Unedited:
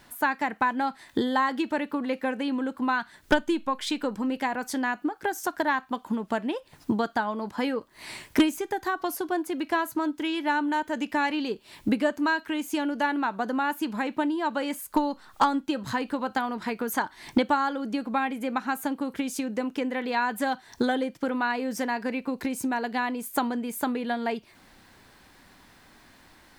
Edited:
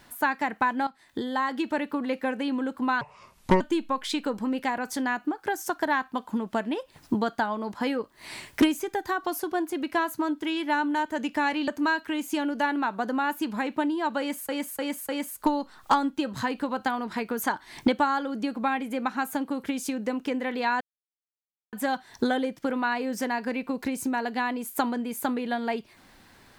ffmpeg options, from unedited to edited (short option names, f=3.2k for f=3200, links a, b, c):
-filter_complex "[0:a]asplit=9[a][b][c][d][e][f][g][h][i];[a]atrim=end=0.87,asetpts=PTS-STARTPTS,afade=t=out:st=0.866:d=0.004:c=hsin:silence=0.199526[j];[b]atrim=start=0.87:end=3.014,asetpts=PTS-STARTPTS,afade=t=in:d=0.84:silence=0.199526[k];[c]atrim=start=3.01:end=3.38,asetpts=PTS-STARTPTS,asetrate=27342,aresample=44100[l];[d]atrim=start=3.376:end=11.452[m];[e]atrim=start=12.078:end=14.892[n];[f]atrim=start=14.588:end=14.892[o];[g]atrim=start=14.588:end=14.892[p];[h]atrim=start=14.588:end=20.31,asetpts=PTS-STARTPTS,afade=t=out:st=5.718:d=0.004:c=hsin,apad=pad_dur=0.92[q];[i]atrim=start=20.31,asetpts=PTS-STARTPTS,afade=t=in:d=0.004:c=hsin[r];[j][k]concat=n=2:v=0:a=1[s];[s][l]acrossfade=d=0.004:c1=hsin:c2=hsin[t];[t][m]acrossfade=d=0.004:c1=hsin:c2=hsin[u];[u][n]acrossfade=d=0.004:c1=hsin:c2=hsin[v];[v][o]acrossfade=d=0.004:c1=hsin:c2=hsin[w];[w][p]acrossfade=d=0.004:c1=hsin:c2=hsin[x];[q][r]concat=n=2:v=0:a=1[y];[x][y]acrossfade=d=0.004:c1=hsin:c2=hsin"